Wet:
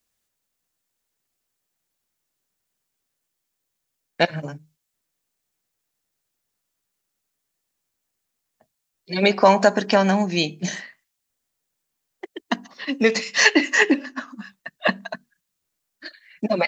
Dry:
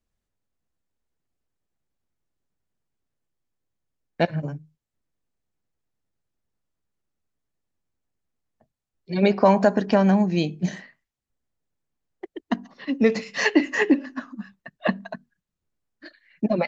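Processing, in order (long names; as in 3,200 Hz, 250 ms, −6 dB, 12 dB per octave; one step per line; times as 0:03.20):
spectral tilt +3 dB per octave
0:13.03–0:14.28: one half of a high-frequency compander decoder only
level +4.5 dB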